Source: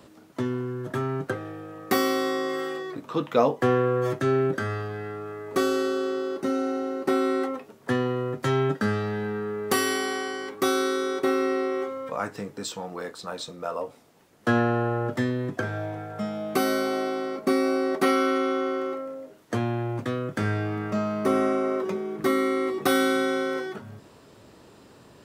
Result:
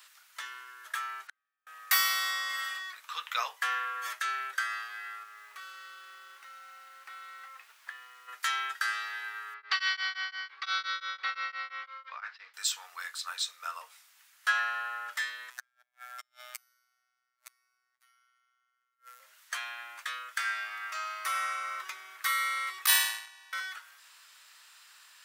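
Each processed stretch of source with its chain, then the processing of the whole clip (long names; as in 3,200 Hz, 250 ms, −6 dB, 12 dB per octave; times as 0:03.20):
0:01.27–0:01.67: downward compressor 2 to 1, threshold −33 dBFS + gate with flip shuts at −32 dBFS, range −40 dB + high-frequency loss of the air 73 metres
0:05.23–0:08.27: bass and treble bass +12 dB, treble −13 dB + downward compressor 3 to 1, threshold −35 dBFS + background noise brown −45 dBFS
0:09.54–0:12.54: elliptic low-pass filter 4,700 Hz, stop band 70 dB + tremolo along a rectified sine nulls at 5.8 Hz
0:15.50–0:19.20: high-shelf EQ 5,400 Hz +6 dB + gate with flip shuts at −23 dBFS, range −41 dB + phases set to zero 124 Hz
0:22.86–0:23.53: noise gate −22 dBFS, range −23 dB + high-shelf EQ 2,800 Hz +10.5 dB + ring modulation 420 Hz
whole clip: high-pass filter 1,400 Hz 24 dB per octave; high-shelf EQ 10,000 Hz +5.5 dB; level +3.5 dB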